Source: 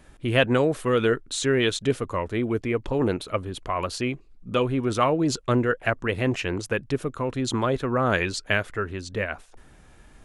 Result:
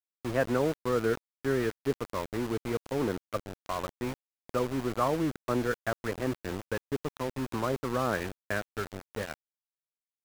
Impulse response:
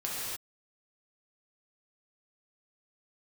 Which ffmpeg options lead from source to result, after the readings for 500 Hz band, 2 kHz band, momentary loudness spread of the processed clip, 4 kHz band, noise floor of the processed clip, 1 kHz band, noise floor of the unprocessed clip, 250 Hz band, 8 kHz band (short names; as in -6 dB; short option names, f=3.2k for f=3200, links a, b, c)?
-6.5 dB, -9.0 dB, 9 LU, -12.5 dB, under -85 dBFS, -6.0 dB, -52 dBFS, -6.5 dB, -10.5 dB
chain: -filter_complex "[0:a]acrossover=split=160[a][b];[a]alimiter=level_in=7.5dB:limit=-24dB:level=0:latency=1:release=12,volume=-7.5dB[c];[c][b]amix=inputs=2:normalize=0,aeval=exprs='val(0)+0.00631*(sin(2*PI*50*n/s)+sin(2*PI*2*50*n/s)/2+sin(2*PI*3*50*n/s)/3+sin(2*PI*4*50*n/s)/4+sin(2*PI*5*50*n/s)/5)':c=same,lowpass=f=1.7k:w=0.5412,lowpass=f=1.7k:w=1.3066,aeval=exprs='val(0)*gte(abs(val(0)),0.0422)':c=same,volume=-6dB"